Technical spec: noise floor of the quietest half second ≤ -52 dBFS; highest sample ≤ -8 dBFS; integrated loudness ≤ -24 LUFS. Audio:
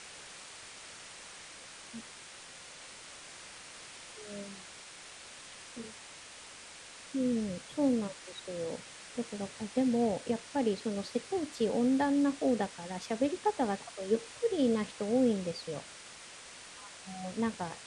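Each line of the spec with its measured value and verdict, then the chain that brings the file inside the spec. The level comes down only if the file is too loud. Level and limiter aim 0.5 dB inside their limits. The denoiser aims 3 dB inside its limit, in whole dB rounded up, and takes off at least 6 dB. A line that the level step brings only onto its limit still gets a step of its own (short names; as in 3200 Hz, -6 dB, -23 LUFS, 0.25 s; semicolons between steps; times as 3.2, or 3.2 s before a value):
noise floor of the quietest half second -50 dBFS: fail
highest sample -17.5 dBFS: OK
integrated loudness -33.0 LUFS: OK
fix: denoiser 6 dB, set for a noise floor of -50 dBFS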